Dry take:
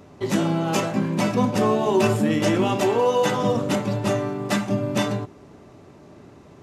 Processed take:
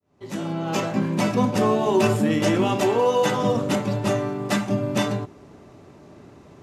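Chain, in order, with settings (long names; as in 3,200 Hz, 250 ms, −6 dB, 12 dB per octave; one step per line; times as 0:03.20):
fade in at the beginning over 0.95 s
0:00.52–0:01.01: parametric band 9,800 Hz −12.5 dB → −4.5 dB 0.52 octaves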